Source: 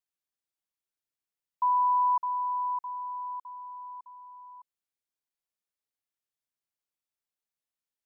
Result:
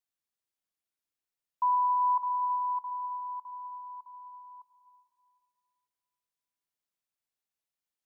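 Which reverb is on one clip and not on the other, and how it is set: digital reverb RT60 2.3 s, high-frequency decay 0.85×, pre-delay 50 ms, DRR 8 dB; gain -1 dB

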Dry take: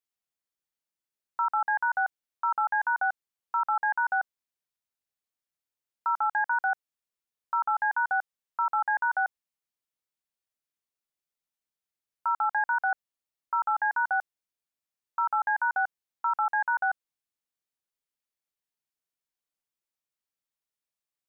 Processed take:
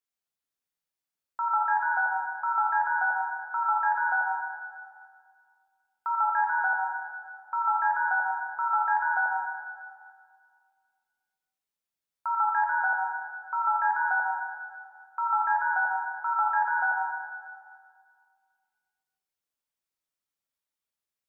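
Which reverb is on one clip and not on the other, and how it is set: plate-style reverb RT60 2 s, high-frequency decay 0.8×, DRR -1.5 dB; gain -3 dB

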